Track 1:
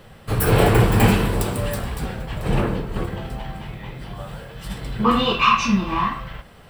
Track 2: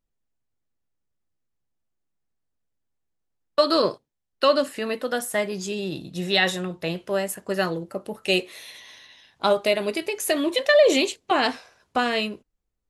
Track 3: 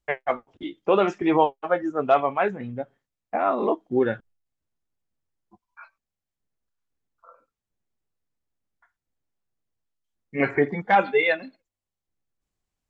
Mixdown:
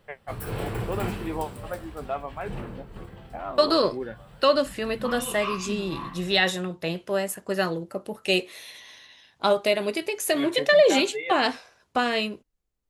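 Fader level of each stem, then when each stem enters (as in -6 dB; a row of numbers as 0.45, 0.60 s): -15.5, -1.0, -12.0 dB; 0.00, 0.00, 0.00 s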